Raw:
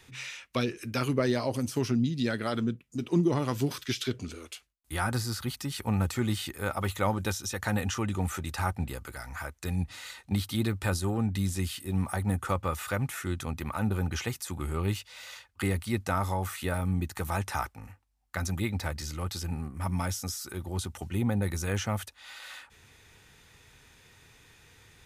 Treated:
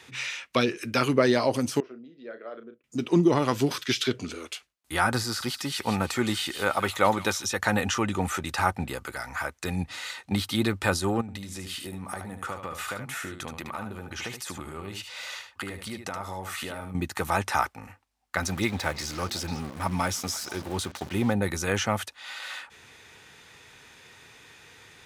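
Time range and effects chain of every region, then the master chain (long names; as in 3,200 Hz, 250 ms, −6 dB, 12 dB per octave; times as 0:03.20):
0:01.80–0:02.84: four-pole ladder band-pass 680 Hz, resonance 30% + parametric band 860 Hz −12.5 dB 0.56 octaves + double-tracking delay 35 ms −9 dB
0:05.23–0:07.44: low-shelf EQ 120 Hz −6.5 dB + delay with a high-pass on its return 163 ms, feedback 32%, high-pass 2,200 Hz, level −8 dB
0:11.21–0:16.95: downward compressor 12 to 1, threshold −36 dBFS + single-tap delay 75 ms −7.5 dB
0:18.42–0:21.33: centre clipping without the shift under −42.5 dBFS + echo through a band-pass that steps 165 ms, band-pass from 4,600 Hz, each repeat −1.4 octaves, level −11.5 dB
whole clip: high-pass filter 300 Hz 6 dB per octave; high-shelf EQ 9,300 Hz −10 dB; level +8 dB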